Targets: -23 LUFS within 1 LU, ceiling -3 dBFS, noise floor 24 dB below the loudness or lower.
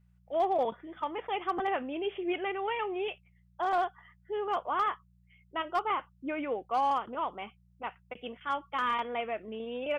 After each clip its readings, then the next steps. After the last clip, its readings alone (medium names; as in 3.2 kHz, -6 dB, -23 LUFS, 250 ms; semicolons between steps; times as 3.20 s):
clipped samples 0.3%; clipping level -21.5 dBFS; hum 60 Hz; highest harmonic 180 Hz; hum level -62 dBFS; loudness -33.0 LUFS; peak level -21.5 dBFS; loudness target -23.0 LUFS
-> clip repair -21.5 dBFS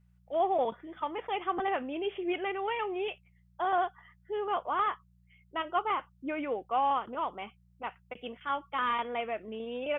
clipped samples 0.0%; hum 60 Hz; highest harmonic 180 Hz; hum level -61 dBFS
-> de-hum 60 Hz, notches 3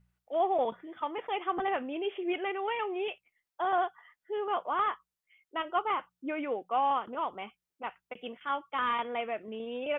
hum not found; loudness -33.0 LUFS; peak level -18.0 dBFS; loudness target -23.0 LUFS
-> trim +10 dB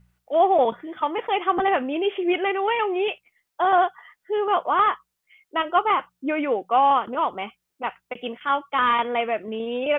loudness -23.0 LUFS; peak level -8.0 dBFS; noise floor -79 dBFS